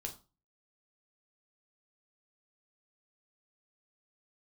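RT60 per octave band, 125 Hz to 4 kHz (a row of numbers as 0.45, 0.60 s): 0.45, 0.35, 0.30, 0.30, 0.25, 0.25 s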